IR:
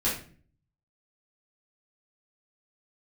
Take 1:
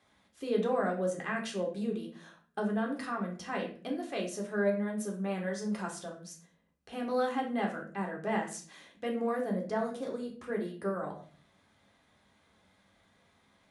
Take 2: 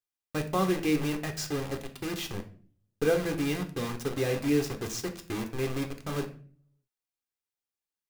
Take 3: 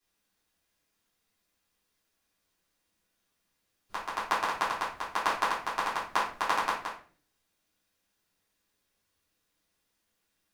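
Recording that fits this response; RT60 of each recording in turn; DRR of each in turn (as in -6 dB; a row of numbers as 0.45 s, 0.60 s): 3; 0.45 s, 0.45 s, 0.45 s; 0.0 dB, 6.0 dB, -9.0 dB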